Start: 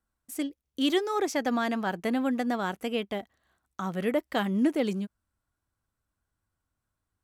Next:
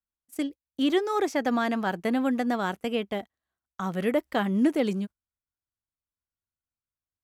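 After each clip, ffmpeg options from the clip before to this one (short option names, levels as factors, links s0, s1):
-filter_complex "[0:a]agate=range=0.112:threshold=0.0112:ratio=16:detection=peak,acrossover=split=2500[s0][s1];[s1]alimiter=level_in=2.99:limit=0.0631:level=0:latency=1:release=190,volume=0.335[s2];[s0][s2]amix=inputs=2:normalize=0,volume=1.26"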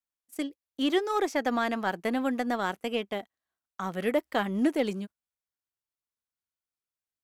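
-af "lowshelf=f=160:g=-11,aeval=exprs='0.211*(cos(1*acos(clip(val(0)/0.211,-1,1)))-cos(1*PI/2))+0.00473*(cos(7*acos(clip(val(0)/0.211,-1,1)))-cos(7*PI/2))':c=same"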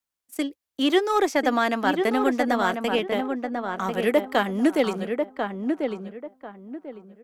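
-filter_complex "[0:a]acrossover=split=210|2200[s0][s1][s2];[s0]acompressor=threshold=0.00501:ratio=6[s3];[s3][s1][s2]amix=inputs=3:normalize=0,asplit=2[s4][s5];[s5]adelay=1043,lowpass=f=1600:p=1,volume=0.596,asplit=2[s6][s7];[s7]adelay=1043,lowpass=f=1600:p=1,volume=0.28,asplit=2[s8][s9];[s9]adelay=1043,lowpass=f=1600:p=1,volume=0.28,asplit=2[s10][s11];[s11]adelay=1043,lowpass=f=1600:p=1,volume=0.28[s12];[s4][s6][s8][s10][s12]amix=inputs=5:normalize=0,volume=2"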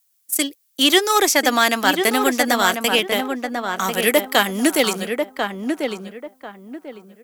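-af "crystalizer=i=7.5:c=0,volume=1.19"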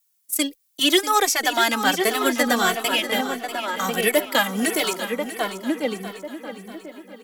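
-filter_complex "[0:a]asplit=2[s0][s1];[s1]aecho=0:1:642|1284|1926|2568:0.251|0.111|0.0486|0.0214[s2];[s0][s2]amix=inputs=2:normalize=0,asplit=2[s3][s4];[s4]adelay=2.2,afreqshift=-1.5[s5];[s3][s5]amix=inputs=2:normalize=1"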